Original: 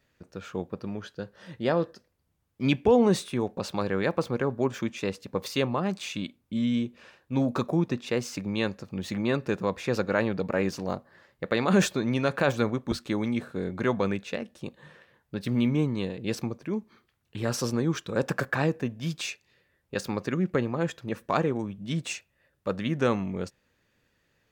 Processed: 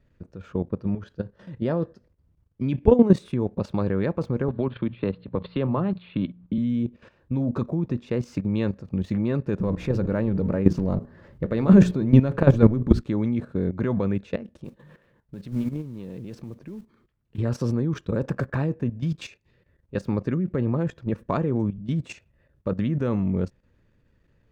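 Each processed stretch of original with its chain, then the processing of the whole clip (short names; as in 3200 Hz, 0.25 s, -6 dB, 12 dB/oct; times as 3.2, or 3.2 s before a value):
4.48–6.58 rippled Chebyshev low-pass 4300 Hz, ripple 3 dB + de-hum 59.38 Hz, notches 3 + three-band squash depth 70%
9.59–13.01 G.711 law mismatch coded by mu + low shelf 460 Hz +6.5 dB + notches 60/120/180/240/300/360/420 Hz
14.64–17.38 bell 82 Hz -12 dB 0.38 oct + compressor 2.5:1, threshold -35 dBFS + modulation noise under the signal 15 dB
whole clip: tilt -3.5 dB/oct; notch 760 Hz, Q 12; level quantiser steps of 13 dB; gain +2.5 dB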